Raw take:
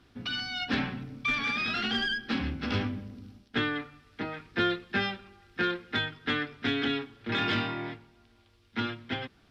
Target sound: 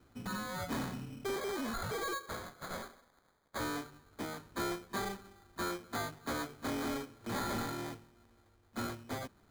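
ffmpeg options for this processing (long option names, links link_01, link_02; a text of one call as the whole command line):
ffmpeg -i in.wav -filter_complex "[0:a]asettb=1/sr,asplit=3[link_01][link_02][link_03];[link_01]atrim=end=1.364[link_04];[link_02]atrim=start=1.36:end=3.6,asetpts=PTS-STARTPTS,afade=type=in:duration=0.004:curve=qsin,afade=type=out:start_time=2.236:duration=0.004:curve=qsin,highpass=frequency=1200:width=0.5412,highpass=frequency=1200:width=1.3066[link_05];[link_03]atrim=start=3.596[link_06];[link_04][link_05]acrossfade=duration=0.004:curve1=hsin:curve2=qsin[link_07];[link_07][link_06]acrossfade=duration=0.004:curve1=qsin:curve2=hsin,acrusher=samples=16:mix=1:aa=0.000001,asoftclip=type=tanh:threshold=-28.5dB,volume=-3.5dB" out.wav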